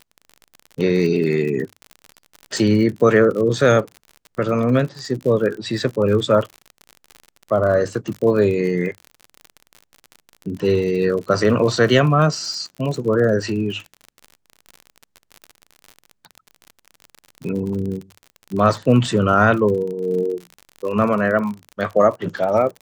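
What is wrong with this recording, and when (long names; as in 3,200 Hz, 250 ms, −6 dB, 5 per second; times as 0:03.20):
surface crackle 49 per second −27 dBFS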